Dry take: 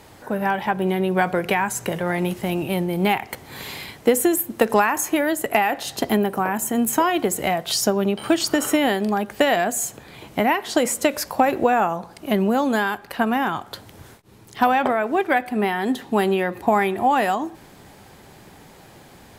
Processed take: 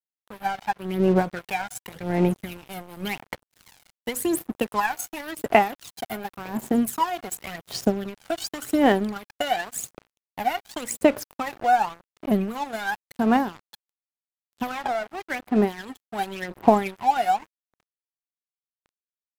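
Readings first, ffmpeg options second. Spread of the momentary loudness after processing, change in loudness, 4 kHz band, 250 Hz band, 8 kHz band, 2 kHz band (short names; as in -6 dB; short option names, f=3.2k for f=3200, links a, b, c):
13 LU, -4.0 dB, -7.0 dB, -3.5 dB, -8.5 dB, -6.5 dB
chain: -af "aphaser=in_gain=1:out_gain=1:delay=1.4:decay=0.78:speed=0.9:type=sinusoidal,aeval=exprs='sgn(val(0))*max(abs(val(0))-0.0531,0)':c=same,volume=-8.5dB"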